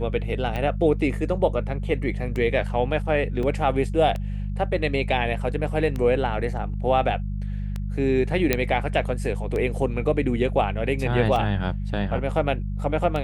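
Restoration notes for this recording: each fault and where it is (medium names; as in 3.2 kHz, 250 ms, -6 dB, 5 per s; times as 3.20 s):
hum 50 Hz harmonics 4 -28 dBFS
tick 33 1/3 rpm -17 dBFS
3.43 s: dropout 2.5 ms
8.53 s: pop -5 dBFS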